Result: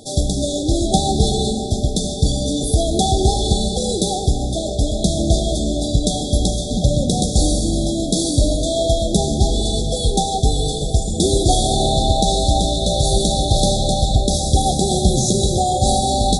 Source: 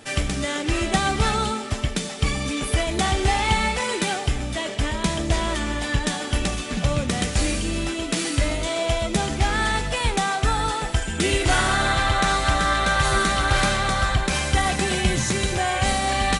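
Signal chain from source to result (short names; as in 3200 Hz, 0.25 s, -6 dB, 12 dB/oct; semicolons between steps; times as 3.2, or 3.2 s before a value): brick-wall FIR band-stop 800–3300 Hz; on a send: analogue delay 0.278 s, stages 4096, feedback 75%, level -17 dB; on the sum: digital reverb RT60 2.6 s, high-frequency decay 0.5×, pre-delay 60 ms, DRR 9.5 dB; gain +6 dB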